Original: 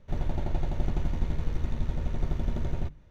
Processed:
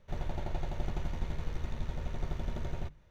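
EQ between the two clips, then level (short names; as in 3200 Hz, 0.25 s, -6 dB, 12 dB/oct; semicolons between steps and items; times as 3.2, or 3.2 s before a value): bell 270 Hz -6 dB 0.38 oct; low shelf 400 Hz -6 dB; -1.0 dB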